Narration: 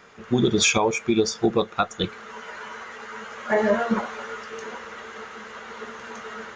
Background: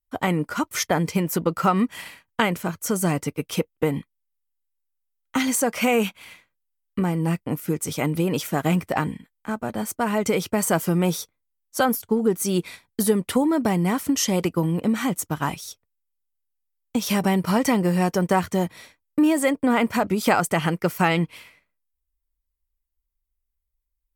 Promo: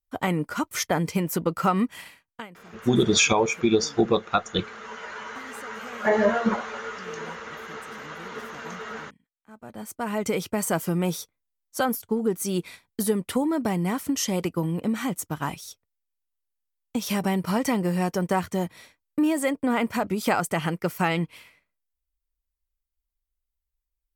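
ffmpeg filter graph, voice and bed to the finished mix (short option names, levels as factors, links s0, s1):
-filter_complex "[0:a]adelay=2550,volume=1[s0];[1:a]volume=7.08,afade=t=out:st=1.85:d=0.63:silence=0.0891251,afade=t=in:st=9.48:d=0.75:silence=0.105925[s1];[s0][s1]amix=inputs=2:normalize=0"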